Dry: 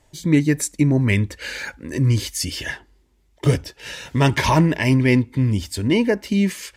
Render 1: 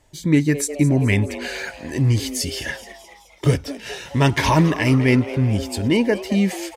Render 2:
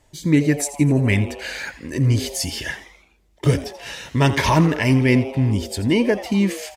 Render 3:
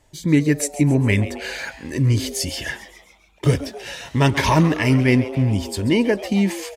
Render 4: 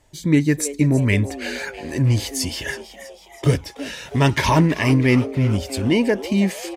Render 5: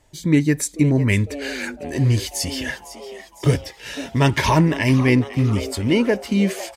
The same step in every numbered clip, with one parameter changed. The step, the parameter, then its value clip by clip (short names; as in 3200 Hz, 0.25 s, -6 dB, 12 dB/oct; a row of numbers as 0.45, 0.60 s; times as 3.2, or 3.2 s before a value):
frequency-shifting echo, time: 213, 84, 136, 325, 504 ms